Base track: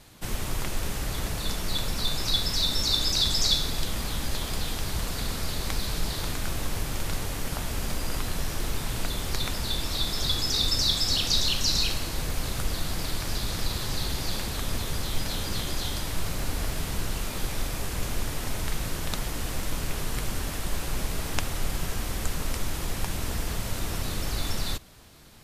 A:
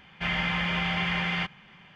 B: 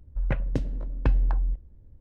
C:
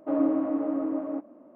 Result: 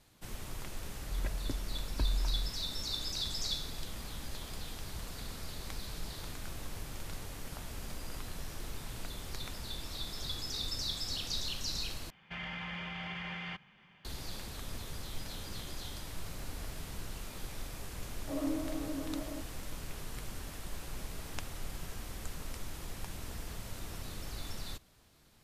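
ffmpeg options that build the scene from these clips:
-filter_complex "[0:a]volume=0.237[s0];[2:a]aecho=1:1:3.1:0.68[s1];[1:a]alimiter=limit=0.0668:level=0:latency=1:release=23[s2];[3:a]flanger=delay=18.5:depth=6.7:speed=1.6[s3];[s0]asplit=2[s4][s5];[s4]atrim=end=12.104[s6];[s2]atrim=end=1.95,asetpts=PTS-STARTPTS,volume=0.335[s7];[s5]atrim=start=14.046[s8];[s1]atrim=end=2,asetpts=PTS-STARTPTS,volume=0.224,afade=t=in:d=0.004:c=hsin,afade=t=out:st=1.996:d=0.004:c=hsin,adelay=940[s9];[s3]atrim=end=1.55,asetpts=PTS-STARTPTS,volume=0.376,afade=t=in:d=0.004:c=hsin,afade=t=out:st=1.546:d=0.004:c=hsin,adelay=18210[s10];[s6][s7]acrossfade=d=0.004:c1=hsin:c2=hsin[s11];[s11][s8]acrossfade=d=0.004:c1=hsin:c2=hsin[s12];[s12][s9][s10]amix=inputs=3:normalize=0"

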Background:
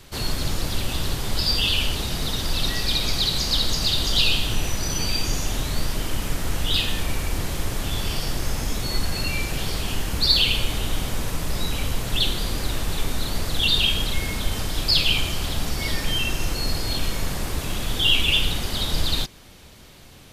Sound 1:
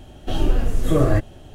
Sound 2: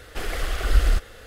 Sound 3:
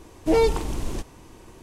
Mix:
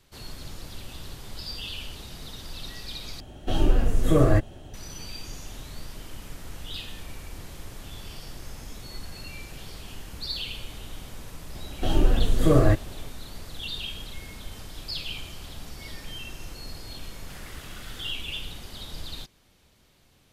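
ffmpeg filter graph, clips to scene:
-filter_complex "[1:a]asplit=2[s0][s1];[0:a]volume=0.188[s2];[2:a]highpass=1300[s3];[s2]asplit=2[s4][s5];[s4]atrim=end=3.204[s6];[s0]atrim=end=1.54,asetpts=PTS-STARTPTS,volume=0.841[s7];[s5]atrim=start=4.736[s8];[s1]atrim=end=1.54,asetpts=PTS-STARTPTS,volume=0.891,afade=t=in:d=0.004:c=hsin,afade=t=out:st=1.536:d=0.004:c=hsin,adelay=11550[s9];[s3]atrim=end=1.26,asetpts=PTS-STARTPTS,volume=0.237,afade=t=in:d=0.004:c=hsin,afade=t=out:st=1.256:d=0.004:c=hsin,adelay=17130[s10];[s6][s7]acrossfade=d=0.004:c1=hsin:c2=hsin[s11];[s11][s8]acrossfade=d=0.004:c1=hsin:c2=hsin[s12];[s12][s9][s10]amix=inputs=3:normalize=0"

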